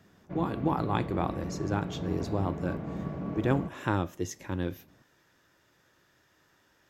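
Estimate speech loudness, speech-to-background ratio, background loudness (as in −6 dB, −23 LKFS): −32.5 LKFS, 5.0 dB, −37.5 LKFS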